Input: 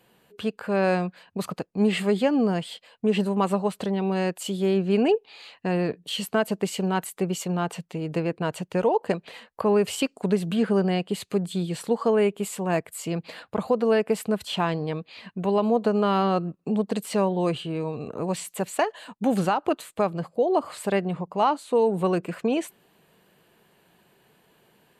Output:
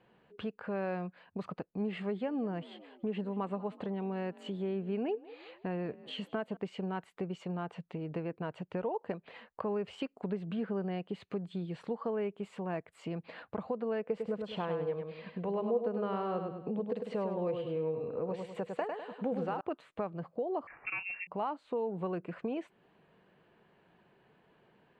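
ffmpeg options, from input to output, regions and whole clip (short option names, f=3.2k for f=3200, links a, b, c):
-filter_complex "[0:a]asettb=1/sr,asplit=3[a][b][c];[a]atrim=end=2.074[d];[b]atrim=start=2.07:end=6.57,asetpts=PTS-STARTPTS,afade=t=in:d=0.004:c=qsin,afade=t=out:st=4.496:d=0.004:c=qsin,equalizer=f=5.3k:t=o:w=0.29:g=-7,asplit=4[e][f][g][h];[f]adelay=188,afreqshift=41,volume=-22dB[i];[g]adelay=376,afreqshift=82,volume=-30dB[j];[h]adelay=564,afreqshift=123,volume=-37.9dB[k];[e][i][j][k]amix=inputs=4:normalize=0,atrim=end_sample=198450[l];[c]atrim=start=6.566[m];[d][l]acrossfade=d=0.004:c1=hsin:c2=qsin[n];[n][m]acrossfade=d=0.004:c1=qsin:c2=hsin,asettb=1/sr,asplit=3[o][p][q];[o]atrim=end=14.024[r];[p]atrim=start=14.02:end=19.61,asetpts=PTS-STARTPTS,afade=t=in:d=0.004:c=qsin,afade=t=out:st=5.586:d=0.004:c=qsin,equalizer=f=490:w=8:g=14,aecho=1:1:101|202|303|404:0.501|0.165|0.0546|0.018,atrim=end_sample=246519[s];[q]atrim=start=19.606[t];[r][s]acrossfade=d=0.004:c1=hsin:c2=qsin[u];[u][t]acrossfade=d=0.004:c1=qsin:c2=hsin,asettb=1/sr,asplit=3[v][w][x];[v]atrim=end=20.674[y];[w]atrim=start=20.67:end=21.27,asetpts=PTS-STARTPTS,afade=t=in:d=0.004:c=qsin,afade=t=out:st=0.596:d=0.004:c=qsin,volume=19dB,asoftclip=hard,volume=-19dB,asplit=2[z][aa];[aa]adelay=32,volume=-13dB[ab];[z][ab]amix=inputs=2:normalize=0,atrim=end_sample=26460,lowpass=f=2.5k:t=q:w=0.5098,lowpass=f=2.5k:t=q:w=0.6013,lowpass=f=2.5k:t=q:w=0.9,lowpass=f=2.5k:t=q:w=2.563,afreqshift=-2900[ac];[x]atrim=start=21.266[ad];[y][ac]acrossfade=d=0.004:c1=hsin:c2=qsin[ae];[ae][ad]acrossfade=d=0.004:c1=qsin:c2=hsin,lowpass=2.3k,acompressor=threshold=-35dB:ratio=2,volume=-4dB"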